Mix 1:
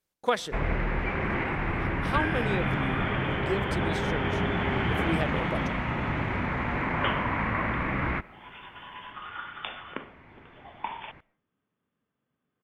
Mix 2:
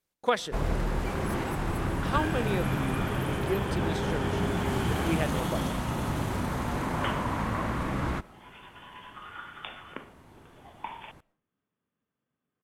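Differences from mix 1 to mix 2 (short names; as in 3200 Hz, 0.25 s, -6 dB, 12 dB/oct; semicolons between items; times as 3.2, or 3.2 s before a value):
first sound: remove synth low-pass 2200 Hz, resonance Q 3.5; second sound -4.0 dB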